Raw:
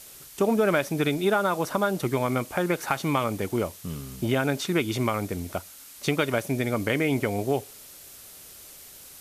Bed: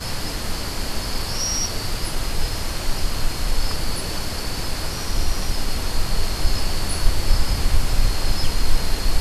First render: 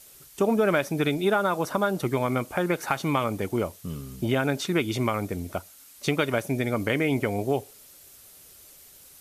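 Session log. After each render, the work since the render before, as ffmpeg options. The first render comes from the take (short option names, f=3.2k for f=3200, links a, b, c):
-af "afftdn=nr=6:nf=-47"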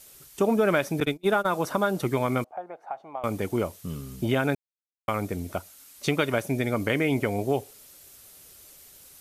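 -filter_complex "[0:a]asettb=1/sr,asplit=3[a][b][c];[a]atrim=end=1.004[d];[b]atrim=start=1:end=1.46,asetpts=PTS-STARTPTS,afade=t=in:d=0.004:c=qsin,afade=t=out:st=0.456:d=0.004:c=qsin,agate=range=-33dB:threshold=-25dB:ratio=16:release=100:detection=peak[e];[c]atrim=start=1.456[f];[d][e]acrossfade=d=0.004:c1=hsin:c2=qsin[g];[g][f]acrossfade=d=0.004:c1=qsin:c2=hsin,asettb=1/sr,asplit=3[h][i][j];[h]atrim=end=2.444[k];[i]atrim=start=2.44:end=3.24,asetpts=PTS-STARTPTS,afade=t=in:d=0.004:c=qsin,afade=t=out:st=0.796:d=0.004:c=qsin,bandpass=f=730:t=q:w=6.1[l];[j]atrim=start=3.236[m];[k][l]acrossfade=d=0.004:c1=hsin:c2=qsin[n];[n][m]acrossfade=d=0.004:c1=qsin:c2=hsin,asplit=3[o][p][q];[o]atrim=end=4.55,asetpts=PTS-STARTPTS,afade=t=out:st=4.546:d=0.004:c=hsin[r];[p]atrim=start=4.55:end=5.08,asetpts=PTS-STARTPTS,volume=0[s];[q]atrim=start=5.08,asetpts=PTS-STARTPTS,afade=t=in:d=0.004:c=hsin[t];[r][s][t]concat=n=3:v=0:a=1"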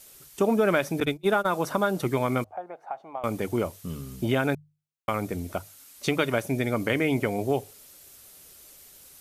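-af "bandreject=f=50:t=h:w=6,bandreject=f=100:t=h:w=6,bandreject=f=150:t=h:w=6"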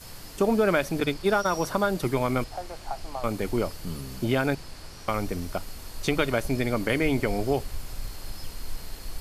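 -filter_complex "[1:a]volume=-17dB[a];[0:a][a]amix=inputs=2:normalize=0"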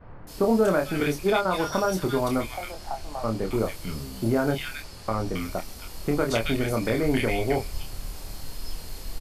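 -filter_complex "[0:a]asplit=2[a][b];[b]adelay=27,volume=-4.5dB[c];[a][c]amix=inputs=2:normalize=0,acrossover=split=1700[d][e];[e]adelay=270[f];[d][f]amix=inputs=2:normalize=0"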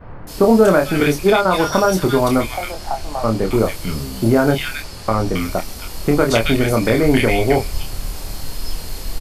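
-af "volume=9.5dB,alimiter=limit=-2dB:level=0:latency=1"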